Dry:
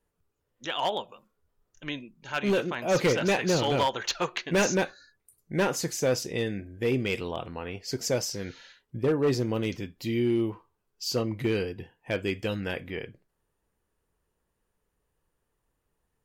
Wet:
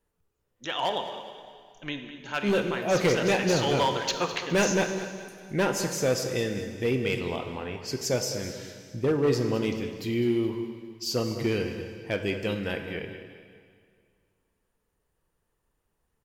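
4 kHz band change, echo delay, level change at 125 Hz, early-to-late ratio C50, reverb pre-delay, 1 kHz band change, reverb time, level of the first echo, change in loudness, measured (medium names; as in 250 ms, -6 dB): +1.0 dB, 207 ms, +1.0 dB, 6.5 dB, 26 ms, +1.0 dB, 2.1 s, -13.5 dB, +1.0 dB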